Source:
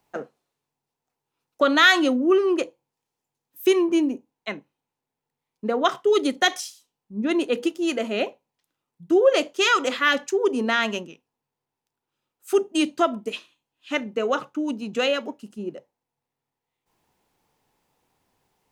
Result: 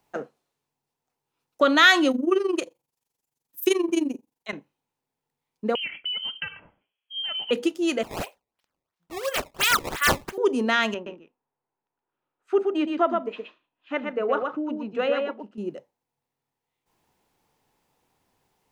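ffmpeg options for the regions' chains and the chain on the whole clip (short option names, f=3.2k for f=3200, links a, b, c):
-filter_complex "[0:a]asettb=1/sr,asplit=3[a][b][c];[a]atrim=end=2.114[d];[b]atrim=start=2.11:end=4.53,asetpts=PTS-STARTPTS,afade=t=in:d=0.004:c=qsin,afade=t=out:st=2.416:d=0.004:c=qsin,aemphasis=mode=production:type=cd,tremolo=f=23:d=0.824[e];[c]atrim=start=4.526[f];[d][e]acrossfade=d=0.004:c1=hsin:c2=qsin[g];[g][f]acrossfade=d=0.004:c1=qsin:c2=hsin,asettb=1/sr,asplit=3[h][i][j];[h]atrim=end=5.754[k];[i]atrim=start=5.75:end=7.51,asetpts=PTS-STARTPTS,afade=t=in:d=0.004:c=qsin,afade=t=out:st=1.756:d=0.004:c=qsin,acompressor=threshold=-28dB:ratio=6:attack=3.2:release=140:knee=1:detection=peak,lowpass=f=2.9k:t=q:w=0.5098,lowpass=f=2.9k:t=q:w=0.6013,lowpass=f=2.9k:t=q:w=0.9,lowpass=f=2.9k:t=q:w=2.563,afreqshift=-3400[l];[j]atrim=start=7.506[m];[k][l]acrossfade=d=0.004:c1=hsin:c2=qsin[n];[n][m]acrossfade=d=0.004:c1=qsin:c2=hsin,asettb=1/sr,asplit=3[o][p][q];[o]atrim=end=8.034[r];[p]atrim=start=8.03:end=10.38,asetpts=PTS-STARTPTS,afade=t=in:d=0.004:c=qsin,afade=t=out:st=2.346:d=0.004:c=qsin,highpass=1.1k,acrusher=samples=17:mix=1:aa=0.000001:lfo=1:lforange=27.2:lforate=2.9[s];[q]atrim=start=10.376[t];[r][s]acrossfade=d=0.004:c1=hsin:c2=qsin[u];[u][t]acrossfade=d=0.004:c1=qsin:c2=hsin,asettb=1/sr,asplit=3[v][w][x];[v]atrim=end=10.944[y];[w]atrim=start=10.94:end=15.58,asetpts=PTS-STARTPTS,afade=t=in:d=0.004:c=qsin,afade=t=out:st=4.636:d=0.004:c=qsin,lowpass=1.7k,equalizer=f=98:w=0.62:g=-11,aecho=1:1:121:0.596,atrim=end_sample=204624[z];[x]atrim=start=15.576[aa];[y][z]acrossfade=d=0.004:c1=hsin:c2=qsin[ab];[ab][aa]acrossfade=d=0.004:c1=qsin:c2=hsin"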